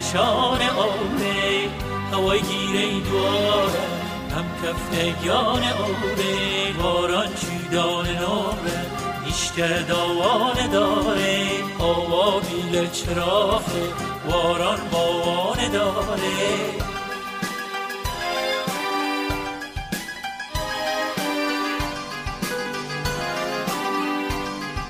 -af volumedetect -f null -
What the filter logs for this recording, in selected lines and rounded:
mean_volume: -23.1 dB
max_volume: -6.9 dB